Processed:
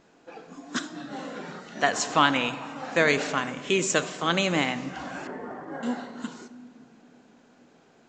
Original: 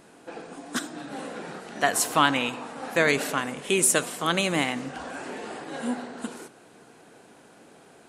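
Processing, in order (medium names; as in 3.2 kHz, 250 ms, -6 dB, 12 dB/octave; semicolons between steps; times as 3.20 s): 5.27–5.83 s: Savitzky-Golay filter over 41 samples; spectral noise reduction 7 dB; on a send at -14.5 dB: reverberation, pre-delay 4 ms; on the sum: µ-law 128 kbps 16 kHz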